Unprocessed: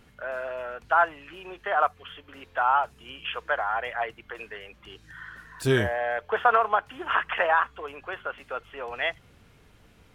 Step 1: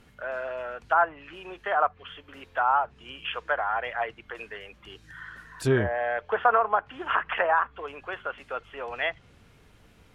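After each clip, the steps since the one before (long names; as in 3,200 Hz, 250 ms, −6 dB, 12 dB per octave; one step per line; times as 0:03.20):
treble cut that deepens with the level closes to 1,700 Hz, closed at −20.5 dBFS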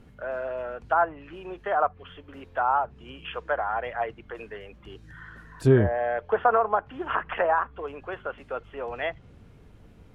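tilt shelving filter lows +6.5 dB, about 870 Hz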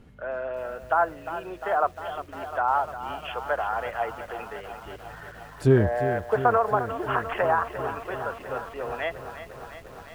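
feedback echo at a low word length 352 ms, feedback 80%, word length 8 bits, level −11.5 dB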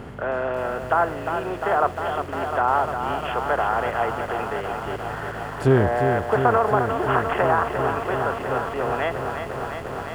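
compressor on every frequency bin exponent 0.6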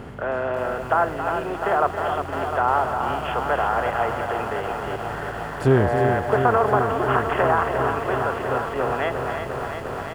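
single-tap delay 274 ms −9 dB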